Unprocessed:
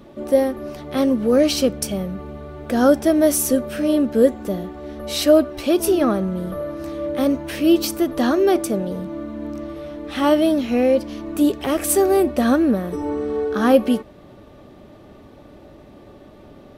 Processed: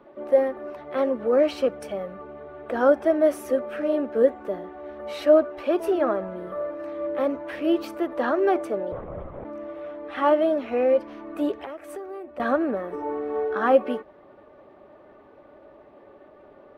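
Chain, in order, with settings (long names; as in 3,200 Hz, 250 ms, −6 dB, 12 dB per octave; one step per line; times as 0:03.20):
spectral magnitudes quantised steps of 15 dB
three-way crossover with the lows and the highs turned down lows −18 dB, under 390 Hz, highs −23 dB, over 2,300 Hz
0:08.92–0:09.45: linear-prediction vocoder at 8 kHz whisper
0:11.58–0:12.40: downward compressor 10 to 1, threshold −34 dBFS, peak gain reduction 16.5 dB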